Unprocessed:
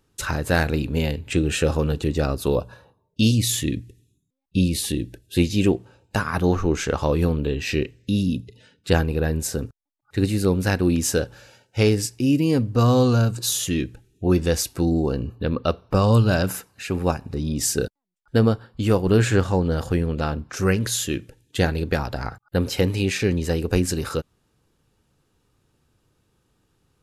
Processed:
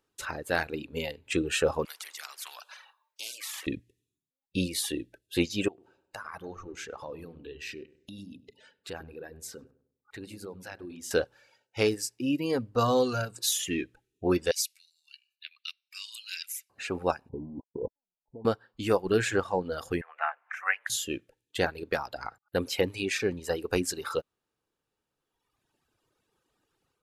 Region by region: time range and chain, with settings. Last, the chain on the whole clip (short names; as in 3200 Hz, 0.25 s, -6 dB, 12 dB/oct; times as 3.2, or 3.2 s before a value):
1.85–3.67 inverse Chebyshev high-pass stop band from 210 Hz, stop band 80 dB + high shelf 3900 Hz -11 dB + spectral compressor 4:1
5.68–11.11 compressor 2.5:1, threshold -38 dBFS + darkening echo 99 ms, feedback 39%, low-pass 1100 Hz, level -7.5 dB
14.51–16.7 elliptic high-pass 2200 Hz, stop band 80 dB + short-mantissa float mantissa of 8-bit
17.29–18.45 switching dead time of 0.28 ms + Chebyshev low-pass 1000 Hz, order 8 + negative-ratio compressor -28 dBFS
20.01–20.9 Chebyshev high-pass 720 Hz, order 4 + resonant high shelf 3000 Hz -14 dB, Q 3 + upward compressor, threshold -36 dBFS
whole clip: reverb removal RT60 1.9 s; tone controls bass -13 dB, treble -3 dB; AGC gain up to 6.5 dB; gain -7.5 dB